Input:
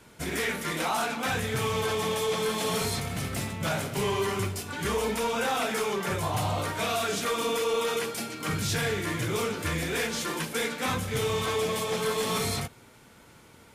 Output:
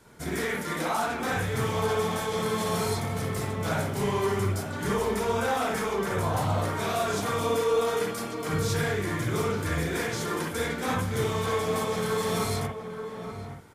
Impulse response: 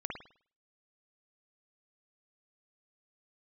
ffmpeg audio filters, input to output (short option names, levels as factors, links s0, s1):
-filter_complex "[0:a]equalizer=f=2700:t=o:w=0.53:g=-7.5,asplit=2[s0][s1];[s1]adelay=874.6,volume=0.398,highshelf=f=4000:g=-19.7[s2];[s0][s2]amix=inputs=2:normalize=0[s3];[1:a]atrim=start_sample=2205,afade=t=out:st=0.13:d=0.01,atrim=end_sample=6174[s4];[s3][s4]afir=irnorm=-1:irlink=0"